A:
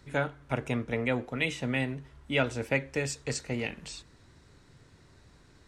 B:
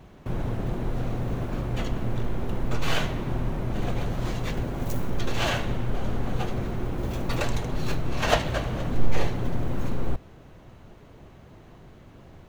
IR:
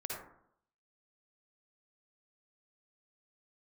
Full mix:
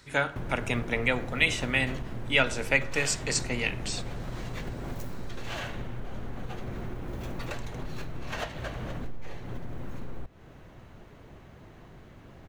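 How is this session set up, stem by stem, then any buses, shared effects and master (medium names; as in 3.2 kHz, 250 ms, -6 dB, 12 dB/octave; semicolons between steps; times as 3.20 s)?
+2.0 dB, 0.00 s, send -17.5 dB, tilt shelf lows -5.5 dB, about 860 Hz
-1.5 dB, 0.10 s, no send, peaking EQ 1.8 kHz +3.5 dB 0.92 oct; compression 6:1, threshold -30 dBFS, peak gain reduction 17.5 dB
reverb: on, RT60 0.70 s, pre-delay 47 ms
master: none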